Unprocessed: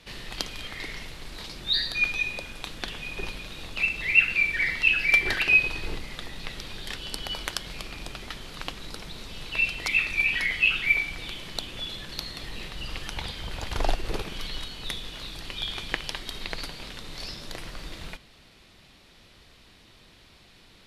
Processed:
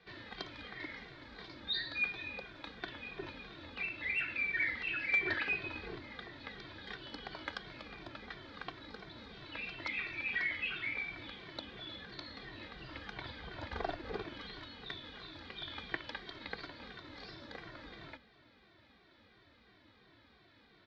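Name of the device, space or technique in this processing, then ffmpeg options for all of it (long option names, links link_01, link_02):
barber-pole flanger into a guitar amplifier: -filter_complex "[0:a]asplit=2[link_01][link_02];[link_02]adelay=2.1,afreqshift=-2.9[link_03];[link_01][link_03]amix=inputs=2:normalize=1,asoftclip=type=tanh:threshold=-15dB,highpass=82,equalizer=frequency=160:width_type=q:width=4:gain=-7,equalizer=frequency=300:width_type=q:width=4:gain=4,equalizer=frequency=1600:width_type=q:width=4:gain=4,equalizer=frequency=2800:width_type=q:width=4:gain=-10,lowpass=frequency=3800:width=0.5412,lowpass=frequency=3800:width=1.3066,volume=-4dB"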